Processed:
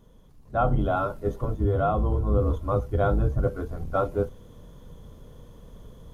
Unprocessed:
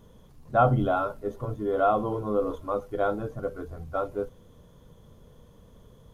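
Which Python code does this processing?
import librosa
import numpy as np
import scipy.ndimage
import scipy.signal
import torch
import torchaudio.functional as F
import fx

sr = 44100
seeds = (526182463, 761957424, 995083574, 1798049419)

y = fx.octave_divider(x, sr, octaves=2, level_db=2.0)
y = fx.peak_eq(y, sr, hz=65.0, db=11.5, octaves=2.2, at=(1.6, 3.48))
y = fx.rider(y, sr, range_db=4, speed_s=0.5)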